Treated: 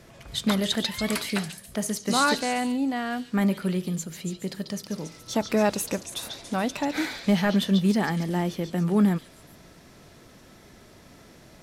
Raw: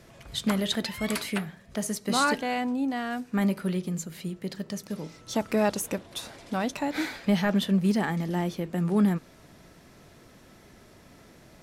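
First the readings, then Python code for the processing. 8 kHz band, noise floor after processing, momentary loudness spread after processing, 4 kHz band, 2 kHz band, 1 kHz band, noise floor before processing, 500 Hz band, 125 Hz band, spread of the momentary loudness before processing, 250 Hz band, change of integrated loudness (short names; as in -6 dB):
+3.5 dB, -52 dBFS, 11 LU, +3.5 dB, +2.0 dB, +2.0 dB, -54 dBFS, +2.0 dB, +2.0 dB, 11 LU, +2.0 dB, +2.0 dB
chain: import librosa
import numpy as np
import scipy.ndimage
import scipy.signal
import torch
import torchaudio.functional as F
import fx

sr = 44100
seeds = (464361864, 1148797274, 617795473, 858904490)

y = fx.echo_stepped(x, sr, ms=141, hz=4300.0, octaves=0.7, feedback_pct=70, wet_db=-3.0)
y = y * librosa.db_to_amplitude(2.0)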